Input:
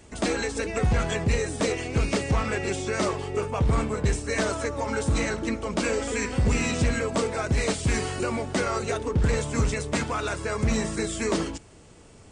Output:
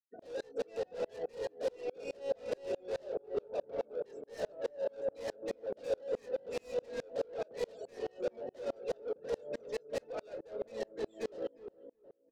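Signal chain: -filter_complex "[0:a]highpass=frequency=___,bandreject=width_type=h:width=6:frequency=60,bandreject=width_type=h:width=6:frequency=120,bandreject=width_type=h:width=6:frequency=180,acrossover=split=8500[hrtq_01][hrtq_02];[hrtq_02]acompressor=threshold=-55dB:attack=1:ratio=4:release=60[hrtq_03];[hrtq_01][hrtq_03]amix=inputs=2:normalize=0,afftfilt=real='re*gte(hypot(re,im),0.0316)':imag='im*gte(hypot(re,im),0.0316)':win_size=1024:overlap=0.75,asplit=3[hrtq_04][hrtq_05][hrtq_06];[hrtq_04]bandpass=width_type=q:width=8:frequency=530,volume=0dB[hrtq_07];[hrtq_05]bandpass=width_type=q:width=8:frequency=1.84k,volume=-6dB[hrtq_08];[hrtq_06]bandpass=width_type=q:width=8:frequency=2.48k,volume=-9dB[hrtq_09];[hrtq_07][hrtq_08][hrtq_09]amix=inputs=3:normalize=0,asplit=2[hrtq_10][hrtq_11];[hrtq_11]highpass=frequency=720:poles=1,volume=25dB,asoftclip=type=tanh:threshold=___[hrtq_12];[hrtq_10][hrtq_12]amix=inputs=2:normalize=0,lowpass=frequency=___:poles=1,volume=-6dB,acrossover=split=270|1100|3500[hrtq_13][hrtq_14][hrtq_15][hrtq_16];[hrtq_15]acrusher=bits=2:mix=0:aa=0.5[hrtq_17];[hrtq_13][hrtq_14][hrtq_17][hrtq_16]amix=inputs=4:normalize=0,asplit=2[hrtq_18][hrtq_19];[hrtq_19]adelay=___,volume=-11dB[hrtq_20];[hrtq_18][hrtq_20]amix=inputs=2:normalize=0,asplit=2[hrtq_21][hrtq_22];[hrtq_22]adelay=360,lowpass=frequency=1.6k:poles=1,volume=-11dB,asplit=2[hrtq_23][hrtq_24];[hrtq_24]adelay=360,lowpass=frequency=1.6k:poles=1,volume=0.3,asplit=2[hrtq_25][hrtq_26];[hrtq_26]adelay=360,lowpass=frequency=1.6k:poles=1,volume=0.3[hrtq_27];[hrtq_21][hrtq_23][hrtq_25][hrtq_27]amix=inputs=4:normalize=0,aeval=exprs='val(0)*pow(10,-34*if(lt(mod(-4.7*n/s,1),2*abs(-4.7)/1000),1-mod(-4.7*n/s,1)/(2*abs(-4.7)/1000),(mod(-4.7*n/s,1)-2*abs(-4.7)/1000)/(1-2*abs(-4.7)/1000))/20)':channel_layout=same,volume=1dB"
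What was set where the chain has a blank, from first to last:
100, -23dB, 3.9k, 22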